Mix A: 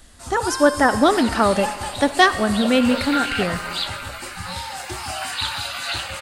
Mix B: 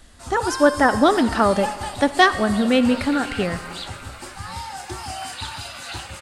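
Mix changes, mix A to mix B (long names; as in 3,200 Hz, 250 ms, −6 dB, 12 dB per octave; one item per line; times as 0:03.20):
second sound −7.5 dB
master: add high-shelf EQ 6,600 Hz −6 dB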